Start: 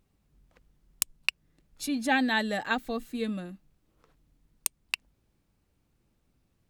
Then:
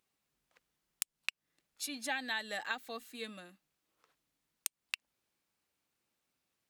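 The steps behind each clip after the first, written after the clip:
high-pass filter 1,400 Hz 6 dB per octave
downward compressor, threshold −31 dBFS, peak gain reduction 10.5 dB
level −1.5 dB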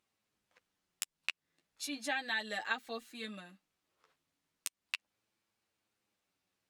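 high-shelf EQ 11,000 Hz −10.5 dB
flanger 0.36 Hz, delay 8.7 ms, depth 3 ms, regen −4%
level +4 dB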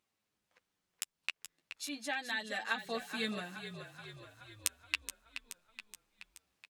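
speech leveller 0.5 s
on a send: echo with shifted repeats 425 ms, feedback 59%, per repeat −36 Hz, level −10 dB
on the sum: level +2 dB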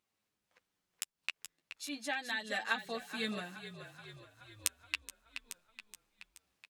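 amplitude modulation by smooth noise, depth 60%
level +2.5 dB

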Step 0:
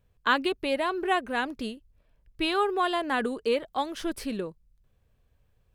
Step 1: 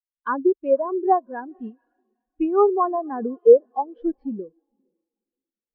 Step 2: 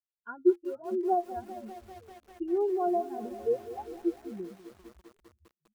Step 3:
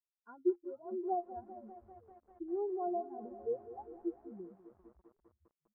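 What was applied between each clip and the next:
feedback delay with all-pass diffusion 476 ms, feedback 49%, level −15 dB; treble cut that deepens with the level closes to 1,300 Hz, closed at −23 dBFS; every bin expanded away from the loudest bin 2.5 to 1; level +8.5 dB
resonances in every octave F, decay 0.11 s; echo with shifted repeats 451 ms, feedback 43%, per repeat −140 Hz, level −23.5 dB; feedback echo at a low word length 198 ms, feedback 80%, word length 8 bits, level −14.5 dB
transistor ladder low-pass 1,300 Hz, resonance 20%; level −4 dB

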